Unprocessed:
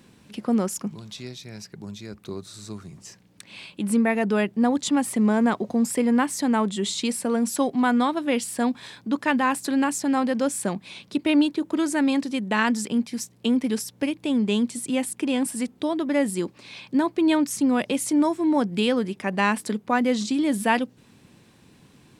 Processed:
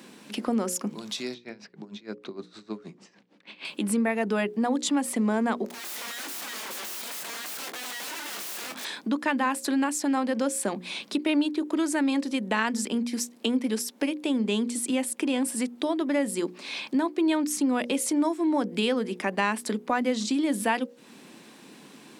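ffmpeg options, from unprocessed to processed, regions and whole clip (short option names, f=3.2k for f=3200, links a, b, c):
-filter_complex "[0:a]asettb=1/sr,asplit=3[a][b][c];[a]atrim=end=1.344[d];[b]atrim=start=1.34:end=3.65,asetpts=PTS-STARTPTS,afade=t=in:d=0.004:c=qsin,afade=t=out:st=2.306:d=0.004:c=qsin,acrossover=split=3400[e][f];[f]acompressor=threshold=-51dB:ratio=4:attack=1:release=60[g];[e][g]amix=inputs=2:normalize=0,lowpass=4.3k,aeval=exprs='val(0)*pow(10,-21*(0.5-0.5*cos(2*PI*6.5*n/s))/20)':c=same[h];[c]atrim=start=3.646[i];[d][h]acrossfade=d=0.004:c1=hsin:c2=qsin[j];[j][i]acrossfade=d=0.004:c1=qsin:c2=hsin,asettb=1/sr,asplit=3[k][l][m];[k]atrim=end=5.664[n];[l]atrim=start=5.66:end=8.85,asetpts=PTS-STARTPTS,afade=t=in:d=0.004:c=qsin,afade=t=out:st=3.186:d=0.004:c=qsin,acompressor=threshold=-31dB:ratio=4:attack=3.2:release=140:knee=1:detection=peak,aeval=exprs='(mod(89.1*val(0)+1,2)-1)/89.1':c=same,asplit=2[o][p];[p]adelay=24,volume=-9dB[q];[o][q]amix=inputs=2:normalize=0,atrim=end_sample=140679[r];[m]atrim=start=8.846[s];[n][r]acrossfade=d=0.004:c1=hsin:c2=qsin[t];[t][s]acrossfade=d=0.004:c1=qsin:c2=hsin,highpass=f=210:w=0.5412,highpass=f=210:w=1.3066,bandreject=f=60:t=h:w=6,bandreject=f=120:t=h:w=6,bandreject=f=180:t=h:w=6,bandreject=f=240:t=h:w=6,bandreject=f=300:t=h:w=6,bandreject=f=360:t=h:w=6,bandreject=f=420:t=h:w=6,bandreject=f=480:t=h:w=6,bandreject=f=540:t=h:w=6,acompressor=threshold=-38dB:ratio=2,volume=7.5dB"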